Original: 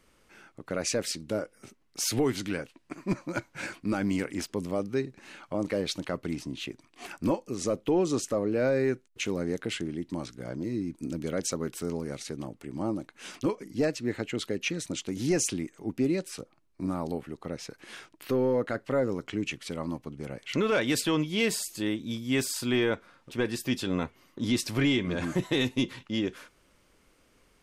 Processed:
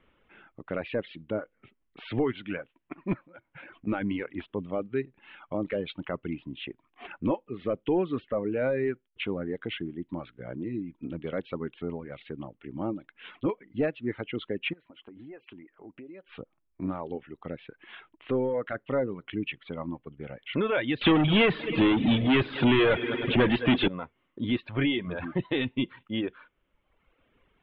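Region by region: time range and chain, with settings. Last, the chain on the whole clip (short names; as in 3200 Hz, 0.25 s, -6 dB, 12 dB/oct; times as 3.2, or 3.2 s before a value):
3.26–3.87 high shelf 3900 Hz -5.5 dB + compressor 16:1, threshold -41 dBFS
14.73–16.29 tone controls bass -10 dB, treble -12 dB + notch 3600 Hz, Q 9.1 + compressor, threshold -42 dBFS
21.01–23.88 multi-head echo 0.104 s, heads first and second, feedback 69%, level -22 dB + sample leveller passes 5 + three-band squash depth 40%
whole clip: steep low-pass 3500 Hz 72 dB/oct; reverb removal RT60 1.2 s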